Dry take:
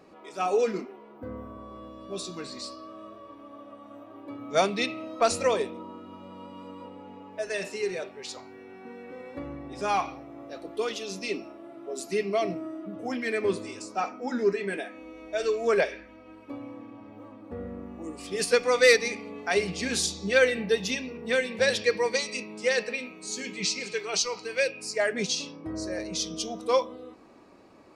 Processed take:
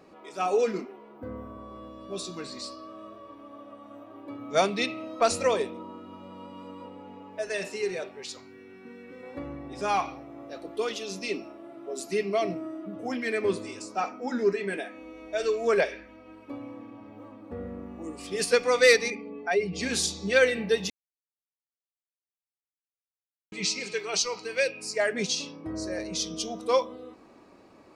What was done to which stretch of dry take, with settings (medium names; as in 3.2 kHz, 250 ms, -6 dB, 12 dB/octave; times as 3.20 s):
8.24–9.23 s: peaking EQ 750 Hz -11.5 dB 0.98 oct
19.10–19.81 s: spectral contrast enhancement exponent 1.5
20.90–23.52 s: mute